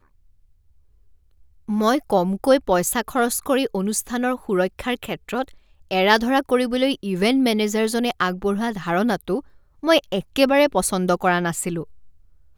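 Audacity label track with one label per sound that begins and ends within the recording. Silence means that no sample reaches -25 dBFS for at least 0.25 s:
1.690000	5.420000	sound
5.910000	9.390000	sound
9.840000	11.820000	sound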